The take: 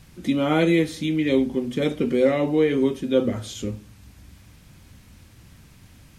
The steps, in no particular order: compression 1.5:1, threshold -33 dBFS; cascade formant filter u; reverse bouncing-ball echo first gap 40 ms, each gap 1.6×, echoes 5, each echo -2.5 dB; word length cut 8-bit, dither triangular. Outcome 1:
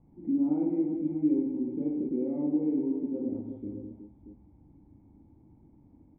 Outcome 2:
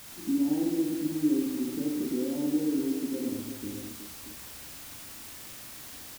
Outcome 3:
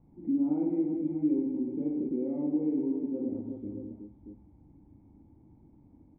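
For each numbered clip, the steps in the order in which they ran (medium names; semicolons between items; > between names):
compression > reverse bouncing-ball echo > word length cut > cascade formant filter; compression > cascade formant filter > word length cut > reverse bouncing-ball echo; reverse bouncing-ball echo > compression > word length cut > cascade formant filter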